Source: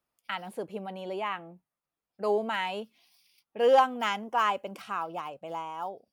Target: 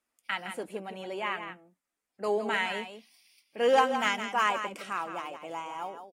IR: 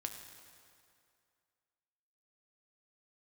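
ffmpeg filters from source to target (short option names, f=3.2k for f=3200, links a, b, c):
-filter_complex "[0:a]equalizer=f=125:t=o:w=1:g=-12,equalizer=f=250:t=o:w=1:g=7,equalizer=f=2k:t=o:w=1:g=8,equalizer=f=8k:t=o:w=1:g=10,asplit=2[a][b];[b]aecho=0:1:164:0.355[c];[a][c]amix=inputs=2:normalize=0,volume=-3.5dB" -ar 44100 -c:a aac -b:a 48k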